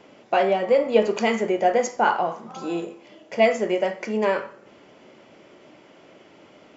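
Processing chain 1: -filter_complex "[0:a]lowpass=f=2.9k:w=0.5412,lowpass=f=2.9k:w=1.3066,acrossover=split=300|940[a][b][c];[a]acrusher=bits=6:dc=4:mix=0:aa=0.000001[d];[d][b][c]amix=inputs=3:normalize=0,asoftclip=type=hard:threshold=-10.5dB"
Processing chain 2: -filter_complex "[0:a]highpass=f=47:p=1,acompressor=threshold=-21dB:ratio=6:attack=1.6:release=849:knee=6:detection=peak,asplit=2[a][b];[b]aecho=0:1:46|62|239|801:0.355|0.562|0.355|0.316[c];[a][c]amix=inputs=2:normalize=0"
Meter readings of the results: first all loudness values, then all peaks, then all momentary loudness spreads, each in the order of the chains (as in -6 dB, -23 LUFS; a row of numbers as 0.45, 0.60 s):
-23.0, -29.0 LUFS; -10.5, -14.0 dBFS; 11, 22 LU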